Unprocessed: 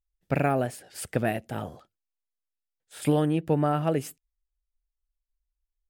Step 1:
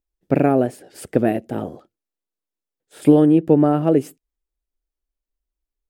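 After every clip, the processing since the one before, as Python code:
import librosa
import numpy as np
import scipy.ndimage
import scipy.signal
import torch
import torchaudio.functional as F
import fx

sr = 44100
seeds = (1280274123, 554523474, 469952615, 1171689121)

y = fx.peak_eq(x, sr, hz=330.0, db=15.0, octaves=2.0)
y = y * librosa.db_to_amplitude(-1.5)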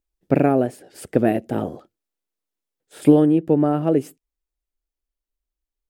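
y = fx.rider(x, sr, range_db=3, speed_s=0.5)
y = y * librosa.db_to_amplitude(-1.0)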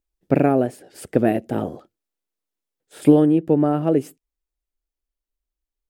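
y = x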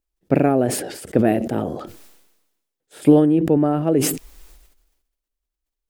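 y = fx.sustainer(x, sr, db_per_s=54.0)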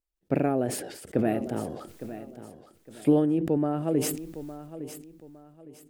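y = fx.echo_feedback(x, sr, ms=860, feedback_pct=31, wet_db=-13.5)
y = y * librosa.db_to_amplitude(-8.5)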